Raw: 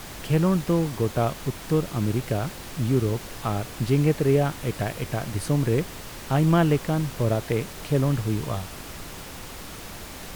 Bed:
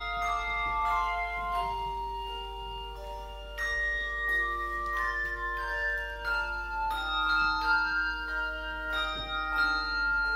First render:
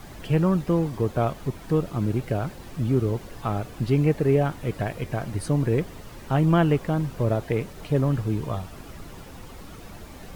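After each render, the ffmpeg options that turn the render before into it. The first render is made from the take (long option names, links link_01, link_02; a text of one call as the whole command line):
ffmpeg -i in.wav -af "afftdn=noise_reduction=10:noise_floor=-39" out.wav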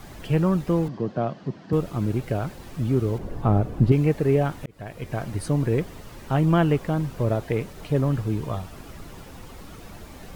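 ffmpeg -i in.wav -filter_complex "[0:a]asettb=1/sr,asplit=3[link_01][link_02][link_03];[link_01]atrim=end=0.884[link_04];[link_02]atrim=start=0.88:end=1.73,asetpts=PTS-STARTPTS,afade=type=in:duration=0.004:curve=qsin,afade=type=out:start_time=0.846:duration=0.004:curve=qsin,highpass=frequency=130:width=0.5412,highpass=frequency=130:width=1.3066,equalizer=frequency=190:width_type=q:width=4:gain=4,equalizer=frequency=440:width_type=q:width=4:gain=-4,equalizer=frequency=910:width_type=q:width=4:gain=-5,equalizer=frequency=1300:width_type=q:width=4:gain=-5,equalizer=frequency=2300:width_type=q:width=4:gain=-9,equalizer=frequency=3600:width_type=q:width=4:gain=-7,lowpass=frequency=4700:width=0.5412,lowpass=frequency=4700:width=1.3066[link_05];[link_03]atrim=start=1.726[link_06];[link_04][link_05]acrossfade=duration=0.004:curve1=hsin:curve2=qsin[link_07];[link_07][link_06]acrossfade=duration=0.004:curve1=qsin:curve2=hsin,asettb=1/sr,asplit=3[link_08][link_09][link_10];[link_08]atrim=end=3.184[link_11];[link_09]atrim=start=3.18:end=3.92,asetpts=PTS-STARTPTS,afade=type=in:duration=0.004:curve=qsin,afade=type=out:start_time=0.736:duration=0.004:curve=qsin,tiltshelf=frequency=1200:gain=9[link_12];[link_10]atrim=start=3.916[link_13];[link_11][link_12]acrossfade=duration=0.004:curve1=hsin:curve2=qsin[link_14];[link_14][link_13]acrossfade=duration=0.004:curve1=qsin:curve2=hsin,asplit=2[link_15][link_16];[link_15]atrim=end=4.66,asetpts=PTS-STARTPTS,afade=type=out:start_time=4.656:duration=0.004:curve=hsin[link_17];[link_16]atrim=start=4.66,asetpts=PTS-STARTPTS,afade=type=in:duration=0.53[link_18];[link_17][link_18]concat=n=2:v=0:a=1" out.wav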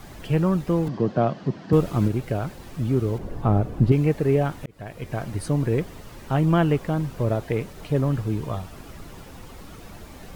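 ffmpeg -i in.wav -filter_complex "[0:a]asplit=3[link_01][link_02][link_03];[link_01]atrim=end=0.872[link_04];[link_02]atrim=start=0.868:end=2.082,asetpts=PTS-STARTPTS,volume=4.5dB[link_05];[link_03]atrim=start=2.078[link_06];[link_04][link_05]acrossfade=duration=0.004:curve1=hsin:curve2=hsin[link_07];[link_07][link_06]acrossfade=duration=0.004:curve1=hsin:curve2=hsin" out.wav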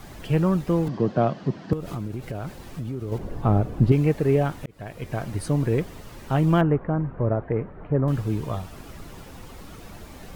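ffmpeg -i in.wav -filter_complex "[0:a]asettb=1/sr,asplit=3[link_01][link_02][link_03];[link_01]atrim=end=1.734[link_04];[link_02]atrim=start=1.73:end=3.12,asetpts=PTS-STARTPTS,afade=type=in:duration=0.004:curve=qsin,afade=type=out:start_time=1.386:duration=0.004:curve=qsin,acompressor=threshold=-27dB:ratio=8:attack=3.2:release=140:knee=1:detection=peak[link_05];[link_03]atrim=start=3.116[link_06];[link_04][link_05]acrossfade=duration=0.004:curve1=hsin:curve2=qsin[link_07];[link_07][link_06]acrossfade=duration=0.004:curve1=qsin:curve2=hsin,asettb=1/sr,asplit=3[link_08][link_09][link_10];[link_08]atrim=end=6.614[link_11];[link_09]atrim=start=6.61:end=8.08,asetpts=PTS-STARTPTS,afade=type=in:duration=0.004:curve=qsin,afade=type=out:start_time=1.466:duration=0.004:curve=qsin,lowpass=frequency=1700:width=0.5412,lowpass=frequency=1700:width=1.3066[link_12];[link_10]atrim=start=8.076[link_13];[link_11][link_12]acrossfade=duration=0.004:curve1=hsin:curve2=qsin[link_14];[link_14][link_13]acrossfade=duration=0.004:curve1=qsin:curve2=hsin" out.wav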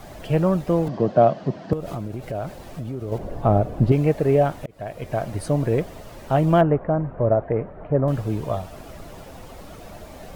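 ffmpeg -i in.wav -af "equalizer=frequency=630:width_type=o:width=0.61:gain=10" out.wav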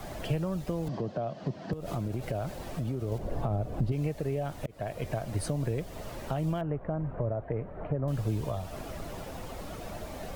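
ffmpeg -i in.wav -filter_complex "[0:a]alimiter=limit=-16.5dB:level=0:latency=1:release=248,acrossover=split=120|3000[link_01][link_02][link_03];[link_02]acompressor=threshold=-33dB:ratio=3[link_04];[link_01][link_04][link_03]amix=inputs=3:normalize=0" out.wav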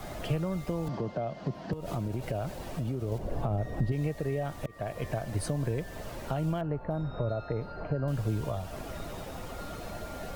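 ffmpeg -i in.wav -i bed.wav -filter_complex "[1:a]volume=-22dB[link_01];[0:a][link_01]amix=inputs=2:normalize=0" out.wav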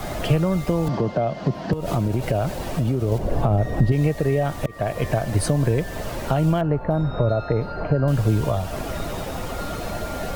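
ffmpeg -i in.wav -af "volume=11dB" out.wav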